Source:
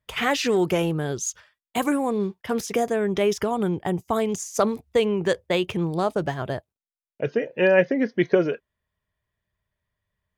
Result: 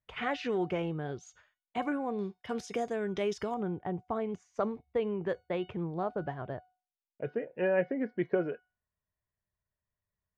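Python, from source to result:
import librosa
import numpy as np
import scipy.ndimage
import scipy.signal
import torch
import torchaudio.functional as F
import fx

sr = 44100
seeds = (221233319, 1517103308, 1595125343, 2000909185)

y = fx.lowpass(x, sr, hz=fx.steps((0.0, 2700.0), (2.19, 5900.0), (3.54, 1800.0)), slope=12)
y = fx.comb_fb(y, sr, f0_hz=730.0, decay_s=0.37, harmonics='all', damping=0.0, mix_pct=70)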